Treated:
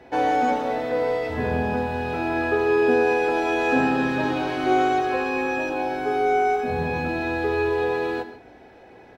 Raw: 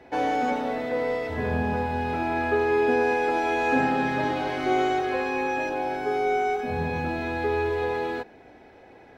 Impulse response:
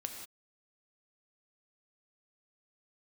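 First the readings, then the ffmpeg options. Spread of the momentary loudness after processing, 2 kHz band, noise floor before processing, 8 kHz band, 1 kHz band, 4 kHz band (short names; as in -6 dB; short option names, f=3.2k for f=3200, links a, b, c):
6 LU, +2.5 dB, -50 dBFS, n/a, +2.5 dB, +2.0 dB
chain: -filter_complex "[0:a]bandreject=f=2.1k:w=15,asplit=2[a][b];[b]adelay=16,volume=-12dB[c];[a][c]amix=inputs=2:normalize=0,asplit=2[d][e];[1:a]atrim=start_sample=2205,asetrate=52920,aresample=44100[f];[e][f]afir=irnorm=-1:irlink=0,volume=2dB[g];[d][g]amix=inputs=2:normalize=0,volume=-3dB"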